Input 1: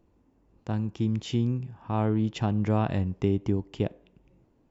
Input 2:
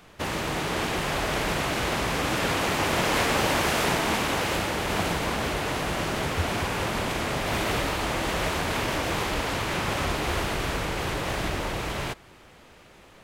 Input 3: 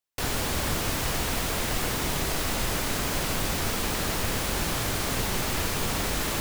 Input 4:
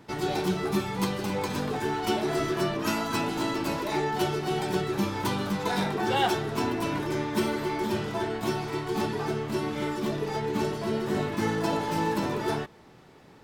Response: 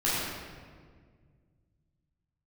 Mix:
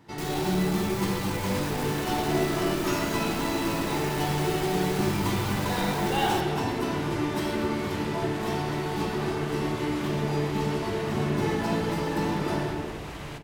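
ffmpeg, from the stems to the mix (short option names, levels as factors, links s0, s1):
-filter_complex "[1:a]acompressor=threshold=0.0398:ratio=6,adelay=1250,volume=0.376,asplit=2[s0][s1];[s1]volume=0.0944[s2];[2:a]asoftclip=type=tanh:threshold=0.0266,volume=0.668[s3];[3:a]volume=0.398,asplit=2[s4][s5];[s5]volume=0.501[s6];[4:a]atrim=start_sample=2205[s7];[s2][s6]amix=inputs=2:normalize=0[s8];[s8][s7]afir=irnorm=-1:irlink=0[s9];[s0][s3][s4][s9]amix=inputs=4:normalize=0"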